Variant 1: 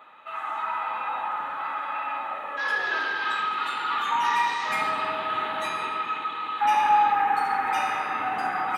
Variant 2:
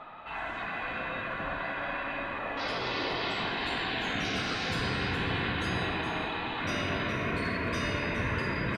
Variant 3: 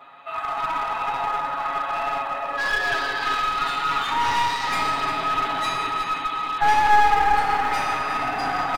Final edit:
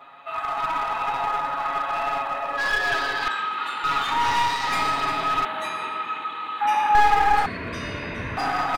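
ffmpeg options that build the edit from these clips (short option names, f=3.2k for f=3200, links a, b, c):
-filter_complex "[0:a]asplit=2[a][b];[2:a]asplit=4[c][d][e][f];[c]atrim=end=3.282[g];[a]atrim=start=3.278:end=3.842[h];[d]atrim=start=3.838:end=5.452[i];[b]atrim=start=5.448:end=6.952[j];[e]atrim=start=6.948:end=7.462[k];[1:a]atrim=start=7.458:end=8.372[l];[f]atrim=start=8.368[m];[g][h]acrossfade=d=0.004:c1=hsin:c2=hsin[n];[n][i]acrossfade=d=0.004:c1=hsin:c2=hsin[o];[o][j]acrossfade=d=0.004:c1=hsin:c2=hsin[p];[p][k]acrossfade=d=0.004:c1=hsin:c2=hsin[q];[q][l]acrossfade=d=0.004:c1=hsin:c2=hsin[r];[r][m]acrossfade=d=0.004:c1=hsin:c2=hsin"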